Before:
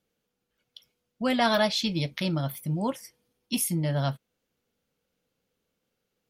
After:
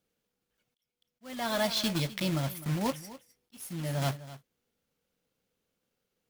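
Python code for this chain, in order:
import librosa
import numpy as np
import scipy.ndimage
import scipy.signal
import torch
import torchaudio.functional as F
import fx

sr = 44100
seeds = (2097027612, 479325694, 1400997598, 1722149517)

y = fx.block_float(x, sr, bits=3)
y = y + 10.0 ** (-17.0 / 20.0) * np.pad(y, (int(256 * sr / 1000.0), 0))[:len(y)]
y = fx.auto_swell(y, sr, attack_ms=588.0)
y = F.gain(torch.from_numpy(y), -2.5).numpy()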